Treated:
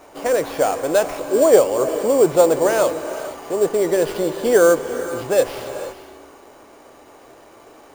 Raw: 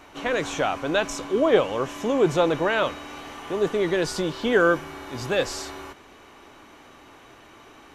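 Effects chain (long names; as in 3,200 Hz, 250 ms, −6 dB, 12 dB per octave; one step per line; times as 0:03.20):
parametric band 550 Hz +12 dB 1.4 octaves
sample-rate reduction 7,800 Hz, jitter 0%
reverb whose tail is shaped and stops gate 500 ms rising, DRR 10.5 dB
level −3 dB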